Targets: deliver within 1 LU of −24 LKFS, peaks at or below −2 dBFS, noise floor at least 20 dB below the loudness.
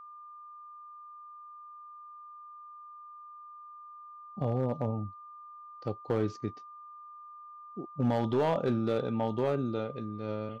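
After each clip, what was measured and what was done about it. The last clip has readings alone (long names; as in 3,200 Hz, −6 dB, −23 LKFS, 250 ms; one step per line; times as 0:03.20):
share of clipped samples 0.7%; peaks flattened at −21.5 dBFS; interfering tone 1,200 Hz; level of the tone −46 dBFS; integrated loudness −32.5 LKFS; sample peak −21.5 dBFS; target loudness −24.0 LKFS
→ clipped peaks rebuilt −21.5 dBFS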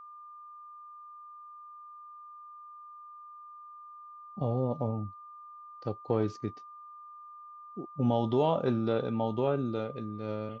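share of clipped samples 0.0%; interfering tone 1,200 Hz; level of the tone −46 dBFS
→ notch filter 1,200 Hz, Q 30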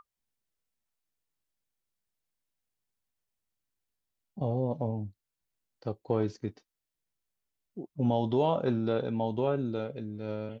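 interfering tone none found; integrated loudness −31.5 LKFS; sample peak −15.5 dBFS; target loudness −24.0 LKFS
→ level +7.5 dB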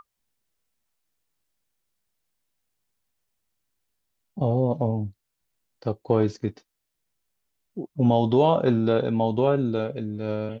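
integrated loudness −24.0 LKFS; sample peak −8.0 dBFS; background noise floor −80 dBFS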